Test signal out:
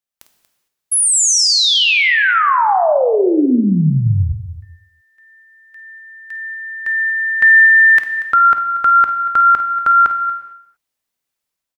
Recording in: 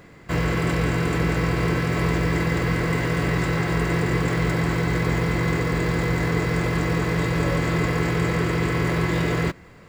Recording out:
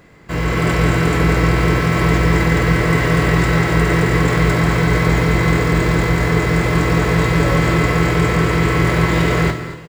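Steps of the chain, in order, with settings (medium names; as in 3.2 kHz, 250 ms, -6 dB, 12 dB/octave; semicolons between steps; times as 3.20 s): level rider gain up to 8 dB; on a send: multi-tap echo 51/235 ms -12/-16 dB; on the sum: gated-style reverb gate 480 ms falling, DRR 8 dB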